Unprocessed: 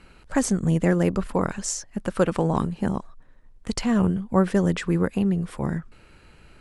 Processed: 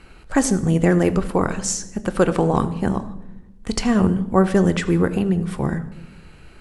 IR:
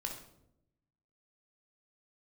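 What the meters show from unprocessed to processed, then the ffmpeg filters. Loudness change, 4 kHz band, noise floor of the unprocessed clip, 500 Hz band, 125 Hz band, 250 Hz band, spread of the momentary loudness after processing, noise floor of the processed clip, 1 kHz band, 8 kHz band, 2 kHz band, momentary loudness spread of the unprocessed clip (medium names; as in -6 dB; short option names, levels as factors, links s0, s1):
+4.0 dB, +4.5 dB, -53 dBFS, +5.0 dB, +3.5 dB, +4.0 dB, 10 LU, -46 dBFS, +5.0 dB, +4.5 dB, +5.0 dB, 8 LU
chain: -filter_complex "[0:a]asplit=2[s0][s1];[1:a]atrim=start_sample=2205,asetrate=33957,aresample=44100[s2];[s1][s2]afir=irnorm=-1:irlink=0,volume=0.422[s3];[s0][s3]amix=inputs=2:normalize=0,volume=1.26"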